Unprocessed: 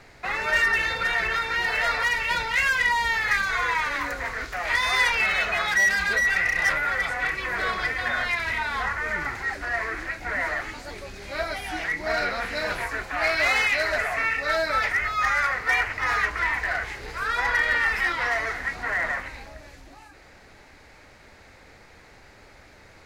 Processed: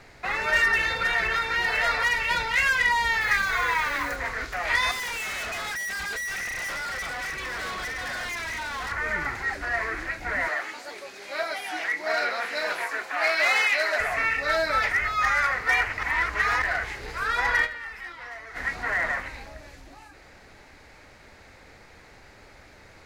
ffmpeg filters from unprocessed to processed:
-filter_complex "[0:a]asettb=1/sr,asplit=3[a][b][c];[a]atrim=end=3.214[d];[b]atrim=start=3.21:end=4.16,asetpts=PTS-STARTPTS,afade=t=in:d=0.004:c=qsin,afade=t=out:st=0.946:d=0.004:c=qsin,acrusher=bits=8:dc=4:mix=0:aa=0.000001[e];[c]atrim=start=4.156[f];[d][e]acrossfade=d=0.004:c1=hsin:c2=qsin[g];[g][f]acrossfade=d=0.004:c1=qsin:c2=hsin,asettb=1/sr,asplit=3[h][i][j];[h]atrim=end=4.914[k];[i]atrim=start=4.91:end=8.92,asetpts=PTS-STARTPTS,afade=t=in:d=0.004:c=qsin,afade=t=out:st=4.006:d=0.004:c=qsin,volume=30.5dB,asoftclip=hard,volume=-30.5dB[l];[j]atrim=start=8.916[m];[k][l]acrossfade=d=0.004:c1=hsin:c2=qsin[n];[n][m]acrossfade=d=0.004:c1=qsin:c2=hsin,asettb=1/sr,asplit=3[o][p][q];[o]atrim=end=10.484[r];[p]atrim=start=10.48:end=14,asetpts=PTS-STARTPTS,afade=t=in:d=0.004:c=qsin,afade=t=out:st=3.516:d=0.004:c=qsin,highpass=390[s];[q]atrim=start=13.996[t];[r][s]acrossfade=d=0.004:c1=hsin:c2=qsin[u];[u][t]acrossfade=d=0.004:c1=qsin:c2=hsin,asplit=5[v][w][x][y][z];[v]atrim=end=16.032[aa];[w]atrim=start=16.028:end=16.622,asetpts=PTS-STARTPTS,areverse[ab];[x]atrim=start=16.618:end=17.82,asetpts=PTS-STARTPTS,afade=t=out:st=1.032:d=0.17:c=exp:silence=0.188365[ac];[y]atrim=start=17.82:end=18.4,asetpts=PTS-STARTPTS,volume=-14.5dB[ad];[z]atrim=start=18.4,asetpts=PTS-STARTPTS,afade=t=in:d=0.17:c=exp:silence=0.188365[ae];[aa][ab]acrossfade=d=0.004:c1=hsin:c2=hsin[af];[ac][ad][ae]concat=n=3:v=0:a=1[ag];[af][ag]acrossfade=d=0.004:c1=hsin:c2=hsin"

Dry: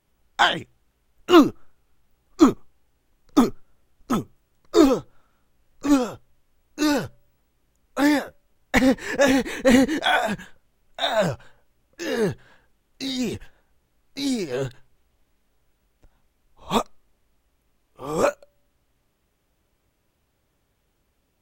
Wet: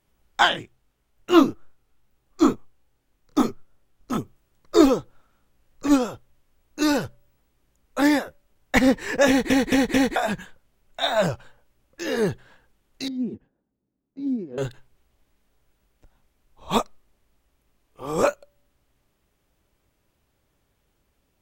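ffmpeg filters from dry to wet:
-filter_complex "[0:a]asplit=3[a][b][c];[a]afade=t=out:st=0.52:d=0.02[d];[b]flanger=delay=22.5:depth=5:speed=2.3,afade=t=in:st=0.52:d=0.02,afade=t=out:st=4.17:d=0.02[e];[c]afade=t=in:st=4.17:d=0.02[f];[d][e][f]amix=inputs=3:normalize=0,asettb=1/sr,asplit=3[g][h][i];[g]atrim=end=13.084[j];[h]atrim=start=13.08:end=14.58,asetpts=PTS-STARTPTS,afade=t=in:d=0.004:c=qsin,afade=t=out:st=1.496:d=0.004:c=qsin,bandpass=f=240:t=q:w=2.1[k];[i]atrim=start=14.576[l];[j][k]acrossfade=d=0.004:c1=hsin:c2=qsin[m];[m][l]acrossfade=d=0.004:c1=qsin:c2=hsin,asplit=5[n][o][p][q][r];[n]atrim=end=9.502[s];[o]atrim=start=9.278:end=9.502[t];[p]atrim=start=9.278:end=9.502[u];[q]atrim=start=9.278:end=9.502[v];[r]atrim=start=10.158[w];[s][t]acrossfade=d=0.004:c1=hsin:c2=hsin[x];[x][u]acrossfade=d=0.004:c1=hsin:c2=hsin[y];[y][v]acrossfade=d=0.004:c1=hsin:c2=hsin[z];[z][w]acrossfade=d=0.004:c1=hsin:c2=hsin"

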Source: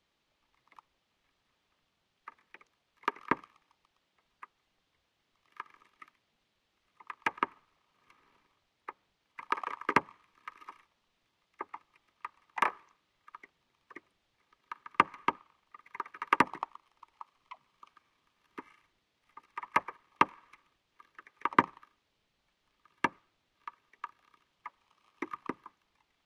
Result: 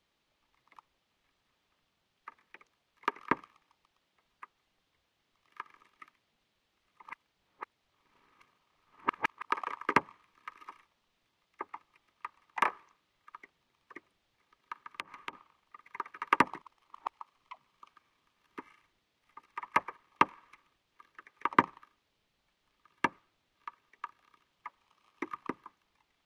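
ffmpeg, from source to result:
-filter_complex "[0:a]asettb=1/sr,asplit=3[a][b][c];[a]atrim=end=14.814[d];[b]atrim=start=14.81:end=15.33,asetpts=PTS-STARTPTS,afade=t=in:d=0.004:c=qsin,afade=t=out:st=0.516:d=0.004:c=qsin,acompressor=threshold=-35dB:ratio=12:attack=3.2:release=140:knee=1:detection=peak[e];[c]atrim=start=15.326[f];[d][e]acrossfade=d=0.004:c1=hsin:c2=qsin[g];[g][f]acrossfade=d=0.004:c1=qsin:c2=hsin,asplit=5[h][i][j][k][l];[h]atrim=end=7.032[m];[i]atrim=start=7.028:end=9.492,asetpts=PTS-STARTPTS,areverse[n];[j]atrim=start=9.488:end=16.622[o];[k]atrim=start=16.618:end=17.082,asetpts=PTS-STARTPTS,areverse[p];[l]atrim=start=17.078[q];[m][n]acrossfade=d=0.004:c1=hsin:c2=hsin[r];[r][o]acrossfade=d=0.004:c1=hsin:c2=hsin[s];[s][p]acrossfade=d=0.004:c1=hsin:c2=hsin[t];[t][q]acrossfade=d=0.004:c1=hsin:c2=hsin"

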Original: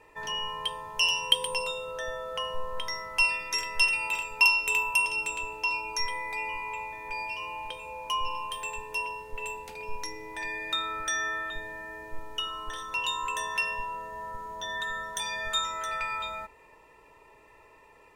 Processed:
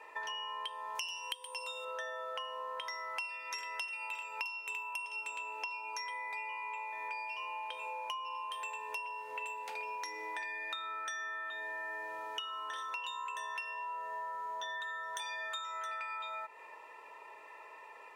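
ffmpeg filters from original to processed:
-filter_complex "[0:a]asettb=1/sr,asplit=3[a][b][c];[a]atrim=end=0.954[d];[b]atrim=start=0.95:end=1.85,asetpts=PTS-STARTPTS,afade=t=in:d=0.004:c=qsin,afade=t=out:st=0.896:d=0.004:c=qsin,bass=f=250:g=-8,treble=f=4k:g=8[e];[c]atrim=start=1.846[f];[d][e]acrossfade=d=0.004:c1=hsin:c2=qsin[g];[g][f]acrossfade=d=0.004:c1=qsin:c2=hsin,highpass=720,highshelf=f=3.7k:g=-11,acompressor=threshold=-45dB:ratio=16,volume=7.5dB"

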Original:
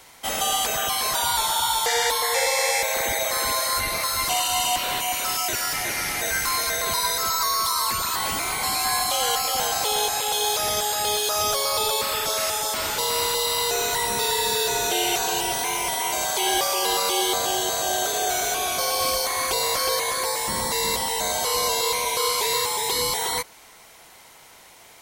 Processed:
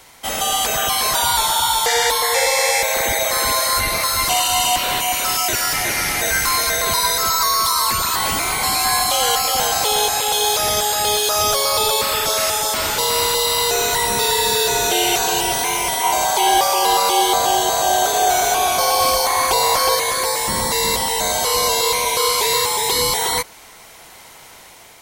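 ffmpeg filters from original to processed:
-filter_complex "[0:a]asettb=1/sr,asplit=3[a][b][c];[a]atrim=end=16.034[d];[b]atrim=start=16.03:end=19.95,asetpts=PTS-STARTPTS,afade=t=in:d=0.004:c=qsin,afade=t=out:st=3.916:d=0.004:c=qsin,equalizer=f=860:w=2.4:g=9[e];[c]atrim=start=19.946[f];[d][e]acrossfade=d=0.004:c1=hsin:c2=qsin[g];[g][f]acrossfade=d=0.004:c1=qsin:c2=hsin,acontrast=35,lowshelf=f=140:g=3,dynaudnorm=f=250:g=5:m=4dB,volume=-2.5dB"

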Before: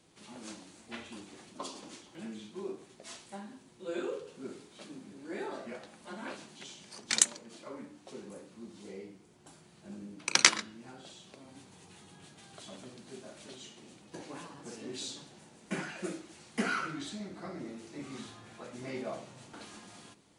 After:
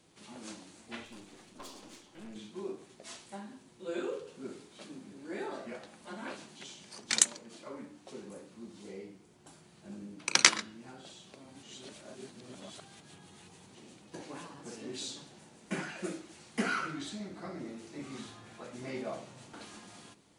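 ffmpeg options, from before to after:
-filter_complex "[0:a]asettb=1/sr,asplit=3[a][b][c];[a]atrim=end=1.054[d];[b]atrim=start=1.05:end=2.36,asetpts=PTS-STARTPTS,afade=t=in:d=0.004:c=qsin,afade=t=out:st=1.306:d=0.004:c=qsin,aeval=exprs='(tanh(141*val(0)+0.6)-tanh(0.6))/141':c=same[e];[c]atrim=start=2.356[f];[d][e]acrossfade=d=0.004:c1=hsin:c2=qsin[g];[g][f]acrossfade=d=0.004:c1=qsin:c2=hsin,asplit=3[h][i][j];[h]atrim=end=11.632[k];[i]atrim=start=11.628:end=13.752,asetpts=PTS-STARTPTS,areverse[l];[j]atrim=start=13.748[m];[k][l]acrossfade=d=0.004:c1=hsin:c2=hsin[n];[n][m]acrossfade=d=0.004:c1=hsin:c2=hsin"

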